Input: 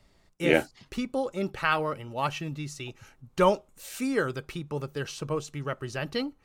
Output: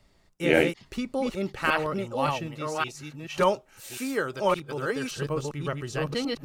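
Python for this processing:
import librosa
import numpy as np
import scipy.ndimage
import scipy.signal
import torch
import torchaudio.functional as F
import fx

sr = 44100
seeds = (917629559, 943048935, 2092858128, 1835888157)

y = fx.reverse_delay(x, sr, ms=568, wet_db=-1.5)
y = fx.low_shelf(y, sr, hz=190.0, db=-9.0, at=(2.47, 5.11))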